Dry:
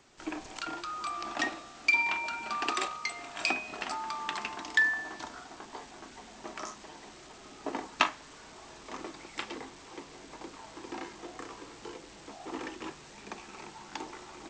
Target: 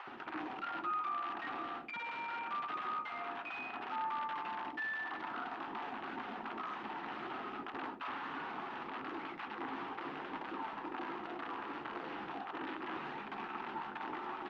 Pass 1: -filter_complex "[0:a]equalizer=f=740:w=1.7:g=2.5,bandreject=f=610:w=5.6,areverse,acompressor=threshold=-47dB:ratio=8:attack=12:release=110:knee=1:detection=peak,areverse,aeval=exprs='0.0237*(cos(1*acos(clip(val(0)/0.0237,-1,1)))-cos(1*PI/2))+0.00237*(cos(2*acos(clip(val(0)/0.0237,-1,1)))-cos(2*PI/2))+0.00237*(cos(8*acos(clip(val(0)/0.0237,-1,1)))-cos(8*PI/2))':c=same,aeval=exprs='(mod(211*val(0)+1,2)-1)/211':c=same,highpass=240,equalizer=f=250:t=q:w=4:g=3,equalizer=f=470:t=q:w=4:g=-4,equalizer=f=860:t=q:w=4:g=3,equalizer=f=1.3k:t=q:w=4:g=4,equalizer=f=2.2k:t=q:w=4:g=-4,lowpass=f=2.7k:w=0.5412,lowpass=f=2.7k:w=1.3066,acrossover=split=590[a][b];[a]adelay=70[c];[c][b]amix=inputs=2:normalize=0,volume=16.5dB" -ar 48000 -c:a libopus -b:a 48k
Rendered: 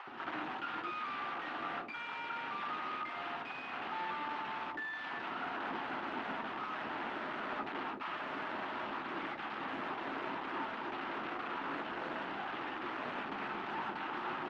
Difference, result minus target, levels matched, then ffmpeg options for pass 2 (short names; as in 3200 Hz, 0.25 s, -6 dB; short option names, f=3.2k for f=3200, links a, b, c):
compressor: peak gain reduction -7.5 dB
-filter_complex "[0:a]equalizer=f=740:w=1.7:g=2.5,bandreject=f=610:w=5.6,areverse,acompressor=threshold=-55.5dB:ratio=8:attack=12:release=110:knee=1:detection=peak,areverse,aeval=exprs='0.0237*(cos(1*acos(clip(val(0)/0.0237,-1,1)))-cos(1*PI/2))+0.00237*(cos(2*acos(clip(val(0)/0.0237,-1,1)))-cos(2*PI/2))+0.00237*(cos(8*acos(clip(val(0)/0.0237,-1,1)))-cos(8*PI/2))':c=same,aeval=exprs='(mod(211*val(0)+1,2)-1)/211':c=same,highpass=240,equalizer=f=250:t=q:w=4:g=3,equalizer=f=470:t=q:w=4:g=-4,equalizer=f=860:t=q:w=4:g=3,equalizer=f=1.3k:t=q:w=4:g=4,equalizer=f=2.2k:t=q:w=4:g=-4,lowpass=f=2.7k:w=0.5412,lowpass=f=2.7k:w=1.3066,acrossover=split=590[a][b];[a]adelay=70[c];[c][b]amix=inputs=2:normalize=0,volume=16.5dB" -ar 48000 -c:a libopus -b:a 48k